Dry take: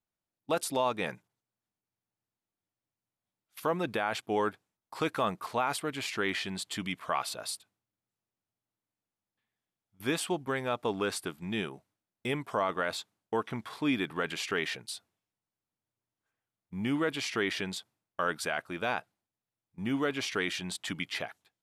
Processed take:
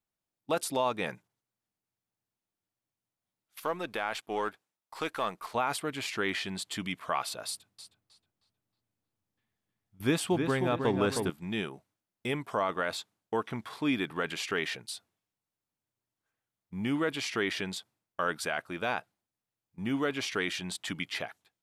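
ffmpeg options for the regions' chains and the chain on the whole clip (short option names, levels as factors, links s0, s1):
-filter_complex "[0:a]asettb=1/sr,asplit=3[s0][s1][s2];[s0]atrim=end=3.604[s3];[s1]atrim=start=3.6:end=5.55,asetpts=PTS-STARTPTS,afade=t=in:d=0.004:c=qsin,afade=t=out:st=1.946:d=0.004:c=qsin,aeval=exprs='if(lt(val(0),0),0.708*val(0),val(0))':c=same,lowshelf=f=250:g=-11.5[s4];[s2]atrim=start=5.546[s5];[s3][s4]acrossfade=d=0.004:c1=hsin:c2=qsin[s6];[s6][s5]acrossfade=d=0.004:c1=qsin:c2=hsin,asettb=1/sr,asplit=3[s7][s8][s9];[s7]atrim=end=7.474[s10];[s8]atrim=start=7.47:end=11.3,asetpts=PTS-STARTPTS,afade=t=in:d=0.004:c=qsin,afade=t=out:st=3.826:d=0.004:c=qsin,lowshelf=f=270:g=9.5,asplit=2[s11][s12];[s12]adelay=314,lowpass=f=2700:p=1,volume=0.562,asplit=2[s13][s14];[s14]adelay=314,lowpass=f=2700:p=1,volume=0.43,asplit=2[s15][s16];[s16]adelay=314,lowpass=f=2700:p=1,volume=0.43,asplit=2[s17][s18];[s18]adelay=314,lowpass=f=2700:p=1,volume=0.43,asplit=2[s19][s20];[s20]adelay=314,lowpass=f=2700:p=1,volume=0.43[s21];[s11][s13][s15][s17][s19][s21]amix=inputs=6:normalize=0,atrim=end_sample=168903[s22];[s9]atrim=start=11.296[s23];[s10][s22]acrossfade=d=0.004:c1=hsin:c2=qsin[s24];[s24][s23]acrossfade=d=0.004:c1=qsin:c2=hsin"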